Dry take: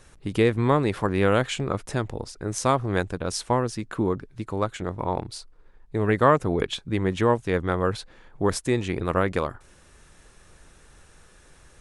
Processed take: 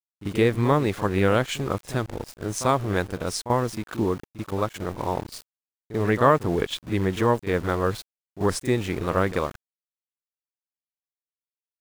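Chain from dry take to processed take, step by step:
centre clipping without the shift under −36 dBFS
echo ahead of the sound 41 ms −13 dB

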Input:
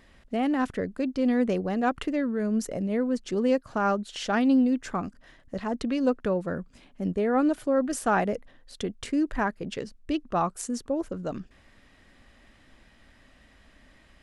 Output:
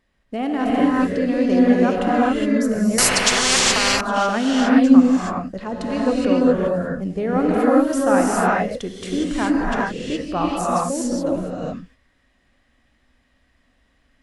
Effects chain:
noise gate −48 dBFS, range −14 dB
reverb whose tail is shaped and stops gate 440 ms rising, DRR −5.5 dB
0:02.98–0:04.01: every bin compressed towards the loudest bin 10 to 1
level +1.5 dB

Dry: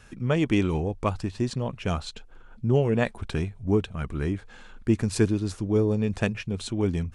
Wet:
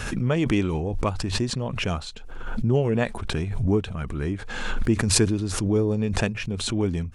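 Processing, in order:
background raised ahead of every attack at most 38 dB per second

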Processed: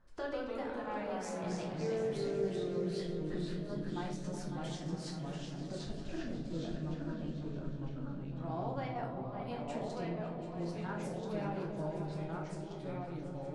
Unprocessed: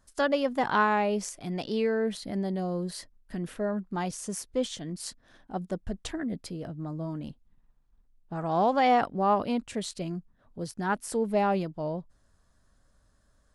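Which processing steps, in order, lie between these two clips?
low-pass that shuts in the quiet parts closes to 2,300 Hz, open at −23.5 dBFS
downward compressor 4 to 1, threshold −42 dBFS, peak gain reduction 19 dB
gate pattern "xxxxx.xxx..x" 191 BPM −12 dB
rectangular room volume 97 cubic metres, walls mixed, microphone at 0.86 metres
delay with pitch and tempo change per echo 120 ms, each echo −2 semitones, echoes 2
on a send: echo whose low-pass opens from repeat to repeat 184 ms, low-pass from 200 Hz, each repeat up 2 octaves, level −3 dB
on the sum: level −2.5 dB

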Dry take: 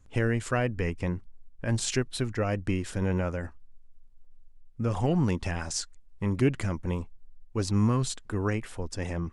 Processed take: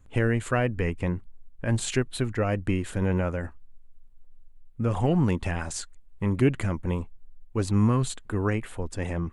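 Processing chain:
parametric band 5,400 Hz −10.5 dB 0.53 octaves
level +2.5 dB

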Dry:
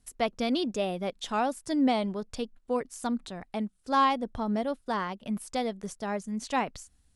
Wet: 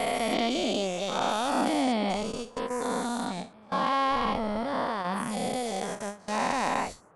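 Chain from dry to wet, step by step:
every bin's largest magnitude spread in time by 480 ms
noise gate with hold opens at −14 dBFS
noise in a band 88–1,300 Hz −52 dBFS
level −6.5 dB

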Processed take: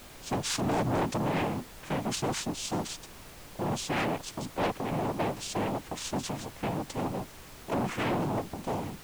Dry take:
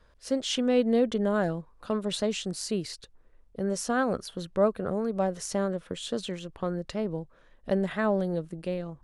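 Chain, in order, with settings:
cochlear-implant simulation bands 4
soft clipping −25.5 dBFS, distortion −9 dB
background noise pink −49 dBFS
level +1 dB

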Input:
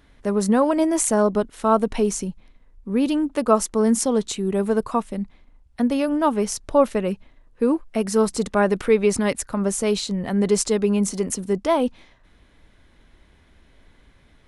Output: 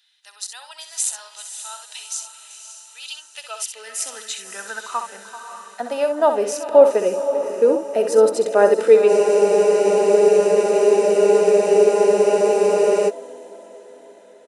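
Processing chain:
multi-tap delay 64/387 ms −8.5/−16.5 dB
high-pass filter sweep 830 Hz → 82 Hz, 0:03.18–0:05.25
notch comb filter 1,100 Hz
high-pass filter sweep 3,600 Hz → 480 Hz, 0:03.14–0:06.54
feedback delay with all-pass diffusion 560 ms, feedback 51%, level −9.5 dB
frozen spectrum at 0:09.11, 3.98 s

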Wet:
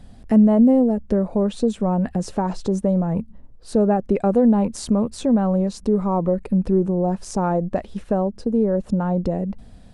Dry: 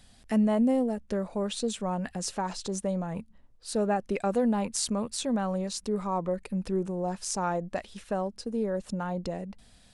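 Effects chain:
tilt shelving filter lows +9.5 dB, about 1,200 Hz
in parallel at −0.5 dB: downward compressor, threshold −26 dBFS, peak gain reduction 13.5 dB

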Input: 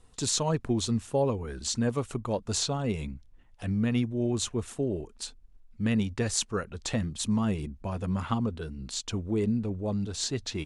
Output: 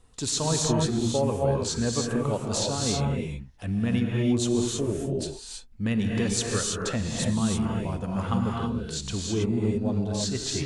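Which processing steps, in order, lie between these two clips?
reverb whose tail is shaped and stops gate 350 ms rising, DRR −1 dB

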